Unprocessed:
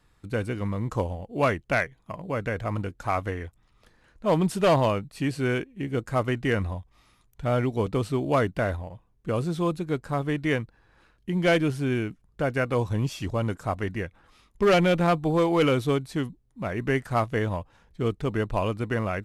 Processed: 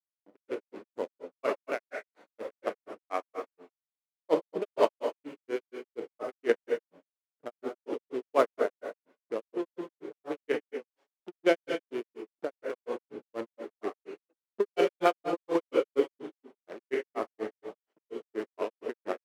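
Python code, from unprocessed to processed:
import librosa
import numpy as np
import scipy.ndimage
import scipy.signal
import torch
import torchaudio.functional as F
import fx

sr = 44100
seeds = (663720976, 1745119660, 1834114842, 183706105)

p1 = fx.wiener(x, sr, points=41)
p2 = p1 + fx.echo_single(p1, sr, ms=330, db=-20.0, dry=0)
p3 = fx.dynamic_eq(p2, sr, hz=430.0, q=1.7, threshold_db=-39.0, ratio=4.0, max_db=7)
p4 = np.sign(p3) * np.maximum(np.abs(p3) - 10.0 ** (-38.0 / 20.0), 0.0)
p5 = fx.level_steps(p4, sr, step_db=10)
p6 = scipy.signal.sosfilt(scipy.signal.butter(4, 280.0, 'highpass', fs=sr, output='sos'), p5)
p7 = fx.rev_gated(p6, sr, seeds[0], gate_ms=260, shape='flat', drr_db=2.0)
p8 = fx.granulator(p7, sr, seeds[1], grain_ms=131.0, per_s=4.2, spray_ms=31.0, spread_st=0)
y = p8 * 10.0 ** (1.5 / 20.0)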